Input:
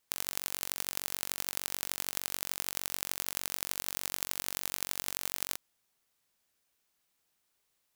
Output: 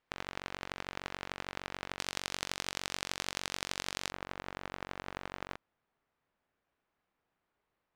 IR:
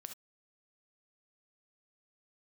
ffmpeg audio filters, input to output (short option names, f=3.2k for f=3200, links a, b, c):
-af "asetnsamples=n=441:p=0,asendcmd='1.99 lowpass f 5000;4.12 lowpass f 1600',lowpass=2.2k,volume=4dB"